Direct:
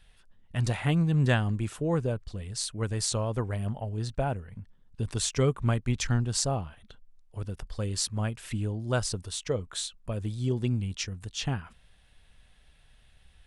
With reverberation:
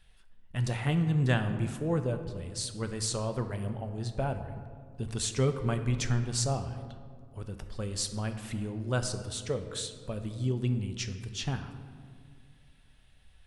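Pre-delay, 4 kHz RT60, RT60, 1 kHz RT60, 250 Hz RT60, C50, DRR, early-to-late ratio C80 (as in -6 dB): 5 ms, 1.0 s, 2.0 s, 1.8 s, 2.5 s, 9.5 dB, 7.0 dB, 10.5 dB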